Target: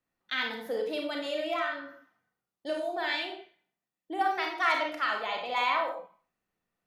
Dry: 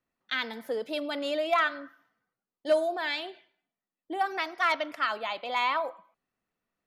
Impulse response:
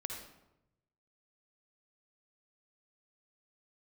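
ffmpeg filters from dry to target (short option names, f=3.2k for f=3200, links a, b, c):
-filter_complex "[0:a]asettb=1/sr,asplit=3[a][b][c];[a]atrim=end=0.814[d];[b]atrim=start=0.81:end=3.04,asetpts=PTS-STARTPTS,afade=t=in:d=0.004:c=qsin,afade=t=out:st=2.226:d=0.004:c=qsin,acompressor=threshold=-28dB:ratio=6[e];[c]atrim=start=3.036[f];[d][e]acrossfade=d=0.004:c1=hsin:c2=qsin[g];[g][f]acrossfade=d=0.004:c1=qsin:c2=hsin[h];[1:a]atrim=start_sample=2205,afade=t=out:st=0.35:d=0.01,atrim=end_sample=15876,asetrate=70560,aresample=44100[i];[h][i]afir=irnorm=-1:irlink=0,volume=5dB"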